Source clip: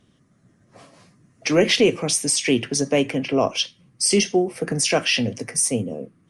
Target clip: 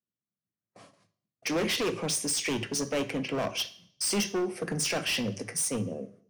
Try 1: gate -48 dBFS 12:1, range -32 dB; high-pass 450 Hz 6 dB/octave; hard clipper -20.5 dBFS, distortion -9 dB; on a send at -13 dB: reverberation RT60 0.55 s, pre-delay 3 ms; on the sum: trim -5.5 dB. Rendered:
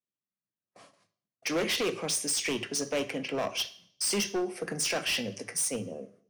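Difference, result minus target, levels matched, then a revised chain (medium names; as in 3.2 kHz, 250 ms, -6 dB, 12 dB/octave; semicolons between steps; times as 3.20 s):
125 Hz band -5.5 dB
gate -48 dBFS 12:1, range -32 dB; high-pass 130 Hz 6 dB/octave; hard clipper -20.5 dBFS, distortion -7 dB; on a send at -13 dB: reverberation RT60 0.55 s, pre-delay 3 ms; on the sum: trim -5.5 dB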